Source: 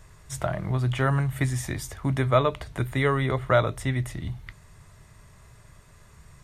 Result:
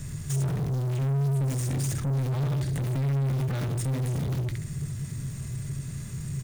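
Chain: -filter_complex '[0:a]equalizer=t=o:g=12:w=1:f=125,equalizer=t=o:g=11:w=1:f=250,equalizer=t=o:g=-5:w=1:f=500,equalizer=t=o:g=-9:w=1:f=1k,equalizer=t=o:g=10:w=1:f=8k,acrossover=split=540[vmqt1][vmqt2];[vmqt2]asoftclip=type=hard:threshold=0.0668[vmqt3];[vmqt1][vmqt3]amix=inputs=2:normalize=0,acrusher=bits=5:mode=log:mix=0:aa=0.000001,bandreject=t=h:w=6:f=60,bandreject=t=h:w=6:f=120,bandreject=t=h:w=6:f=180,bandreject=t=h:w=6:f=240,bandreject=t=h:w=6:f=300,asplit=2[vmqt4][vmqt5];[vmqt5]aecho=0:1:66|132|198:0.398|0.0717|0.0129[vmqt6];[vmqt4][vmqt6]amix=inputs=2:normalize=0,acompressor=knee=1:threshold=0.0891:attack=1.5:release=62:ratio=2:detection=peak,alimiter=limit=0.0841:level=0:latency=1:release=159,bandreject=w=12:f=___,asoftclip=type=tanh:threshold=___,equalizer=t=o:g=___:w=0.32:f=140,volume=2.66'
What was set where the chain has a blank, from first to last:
7.8k, 0.0133, 6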